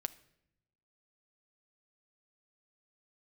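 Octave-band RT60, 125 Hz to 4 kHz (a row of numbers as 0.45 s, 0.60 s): 1.4 s, 1.2 s, 0.90 s, 0.70 s, 0.75 s, 0.60 s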